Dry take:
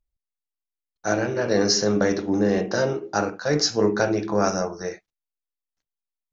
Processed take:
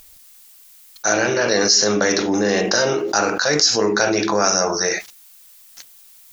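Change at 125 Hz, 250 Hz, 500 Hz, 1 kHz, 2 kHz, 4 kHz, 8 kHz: −1.5 dB, +1.5 dB, +3.5 dB, +6.0 dB, +9.0 dB, +9.0 dB, can't be measured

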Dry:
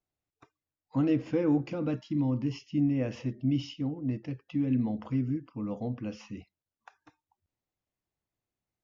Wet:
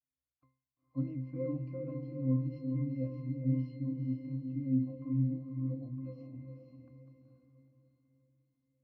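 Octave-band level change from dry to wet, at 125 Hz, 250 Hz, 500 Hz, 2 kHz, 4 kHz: −1.0 dB, −6.5 dB, −8.0 dB, below −15 dB, below −25 dB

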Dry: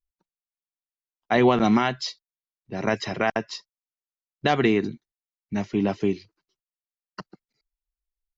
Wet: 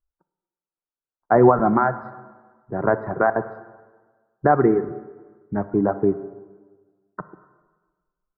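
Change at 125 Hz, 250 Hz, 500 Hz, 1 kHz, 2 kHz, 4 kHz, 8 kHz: +3.0 dB, +1.5 dB, +5.5 dB, +5.5 dB, −1.0 dB, below −40 dB, can't be measured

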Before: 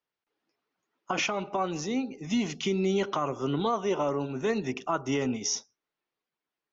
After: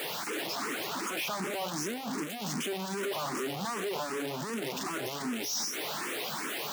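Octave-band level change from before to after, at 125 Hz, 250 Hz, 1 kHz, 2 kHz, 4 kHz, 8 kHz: −7.0 dB, −6.5 dB, −3.0 dB, +1.5 dB, +2.0 dB, can't be measured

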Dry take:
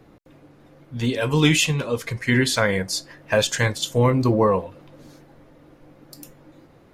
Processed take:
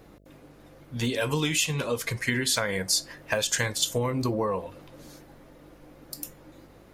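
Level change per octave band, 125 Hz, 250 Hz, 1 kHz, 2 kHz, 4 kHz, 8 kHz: −9.0, −8.5, −7.5, −5.5, −3.0, +0.5 decibels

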